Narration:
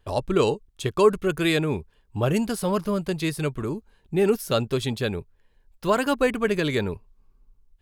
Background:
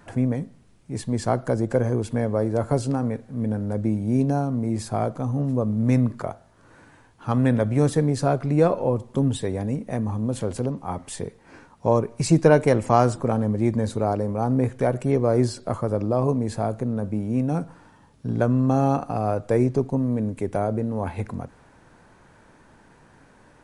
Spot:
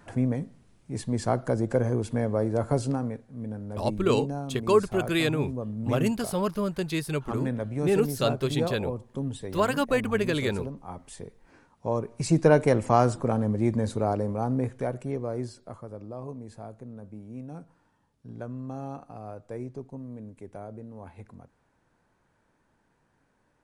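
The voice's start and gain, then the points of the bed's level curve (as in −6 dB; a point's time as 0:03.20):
3.70 s, −3.0 dB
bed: 0:02.90 −3 dB
0:03.28 −10 dB
0:11.73 −10 dB
0:12.52 −3 dB
0:14.25 −3 dB
0:15.88 −16.5 dB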